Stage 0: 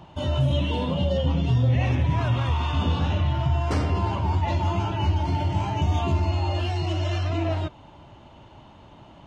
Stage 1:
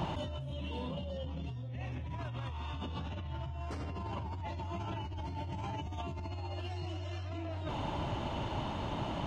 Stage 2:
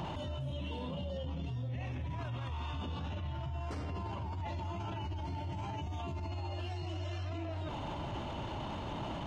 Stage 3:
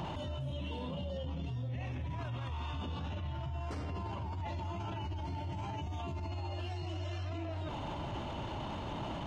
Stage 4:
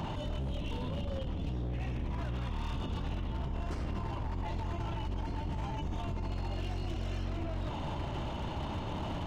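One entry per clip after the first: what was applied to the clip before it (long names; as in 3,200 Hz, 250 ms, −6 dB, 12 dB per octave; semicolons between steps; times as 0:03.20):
brickwall limiter −23 dBFS, peak gain reduction 10.5 dB; compressor whose output falls as the input rises −40 dBFS, ratio −1; level +1.5 dB
brickwall limiter −36.5 dBFS, peak gain reduction 11.5 dB; level +4.5 dB
no processing that can be heard
sub-octave generator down 1 octave, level +2 dB; wave folding −31 dBFS; level +1 dB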